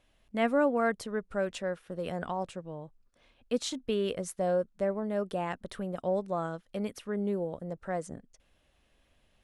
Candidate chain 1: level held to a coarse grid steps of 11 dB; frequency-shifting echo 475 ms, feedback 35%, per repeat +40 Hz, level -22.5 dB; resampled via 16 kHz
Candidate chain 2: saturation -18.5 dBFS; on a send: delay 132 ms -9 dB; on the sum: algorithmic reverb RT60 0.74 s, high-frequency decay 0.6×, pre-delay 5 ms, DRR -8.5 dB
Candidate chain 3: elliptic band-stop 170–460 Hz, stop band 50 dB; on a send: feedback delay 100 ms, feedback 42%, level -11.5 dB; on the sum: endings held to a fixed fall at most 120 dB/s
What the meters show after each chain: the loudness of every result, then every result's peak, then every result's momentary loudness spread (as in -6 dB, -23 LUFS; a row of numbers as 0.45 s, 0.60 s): -38.0 LUFS, -24.0 LUFS, -36.0 LUFS; -21.0 dBFS, -6.5 dBFS, -17.5 dBFS; 11 LU, 12 LU, 13 LU